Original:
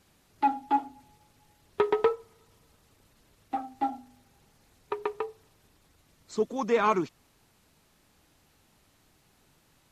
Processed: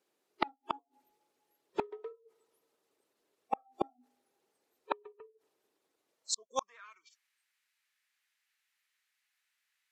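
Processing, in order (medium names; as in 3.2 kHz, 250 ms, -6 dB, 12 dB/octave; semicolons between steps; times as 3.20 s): spectral noise reduction 30 dB; high-pass sweep 390 Hz -> 1.9 kHz, 6.06–6.94 s; inverted gate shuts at -30 dBFS, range -41 dB; trim +14 dB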